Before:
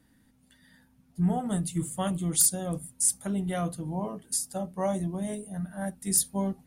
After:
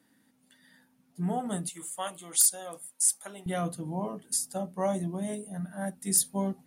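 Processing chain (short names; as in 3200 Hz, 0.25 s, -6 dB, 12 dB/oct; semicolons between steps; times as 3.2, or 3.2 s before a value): HPF 230 Hz 12 dB/oct, from 1.69 s 670 Hz, from 3.46 s 150 Hz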